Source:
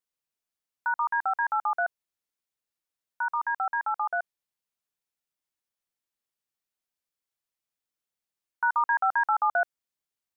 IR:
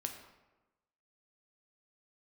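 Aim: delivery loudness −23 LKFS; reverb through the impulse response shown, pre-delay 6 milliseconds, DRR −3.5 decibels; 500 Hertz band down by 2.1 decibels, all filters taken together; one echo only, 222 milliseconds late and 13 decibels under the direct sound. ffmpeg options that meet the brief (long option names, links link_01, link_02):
-filter_complex "[0:a]equalizer=frequency=500:width_type=o:gain=-4,aecho=1:1:222:0.224,asplit=2[link_01][link_02];[1:a]atrim=start_sample=2205,adelay=6[link_03];[link_02][link_03]afir=irnorm=-1:irlink=0,volume=4dB[link_04];[link_01][link_04]amix=inputs=2:normalize=0"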